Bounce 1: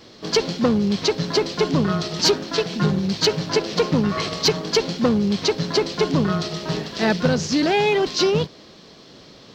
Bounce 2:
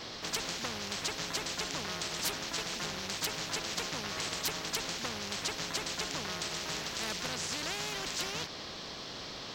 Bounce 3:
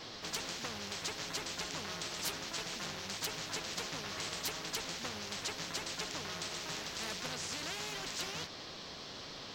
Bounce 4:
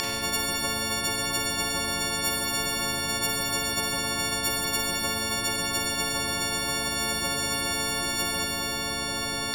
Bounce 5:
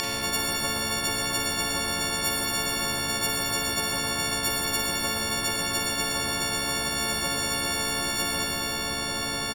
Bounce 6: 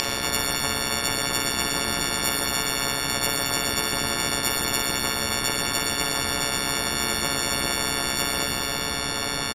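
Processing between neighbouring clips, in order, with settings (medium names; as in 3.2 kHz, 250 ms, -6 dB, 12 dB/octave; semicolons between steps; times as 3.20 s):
spectrum-flattening compressor 4:1; trim -7.5 dB
flange 1.5 Hz, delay 6.2 ms, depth 7.3 ms, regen -47%
partials quantised in pitch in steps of 4 st; Schroeder reverb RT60 1.4 s, combs from 32 ms, DRR 2 dB; spectrum-flattening compressor 4:1; trim +4 dB
frequency-shifting echo 115 ms, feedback 34%, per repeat -69 Hz, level -10.5 dB
AM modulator 130 Hz, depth 90%; resampled via 32 kHz; trim +6.5 dB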